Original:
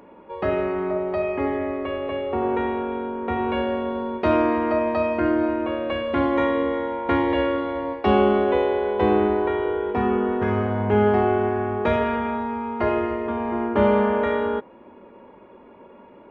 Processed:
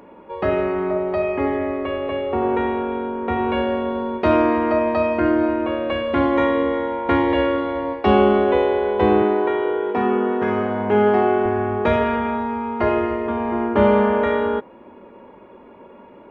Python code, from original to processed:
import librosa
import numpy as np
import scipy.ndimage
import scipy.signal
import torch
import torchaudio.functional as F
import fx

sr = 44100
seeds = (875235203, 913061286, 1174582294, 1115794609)

y = fx.highpass(x, sr, hz=190.0, slope=12, at=(9.22, 11.46))
y = F.gain(torch.from_numpy(y), 3.0).numpy()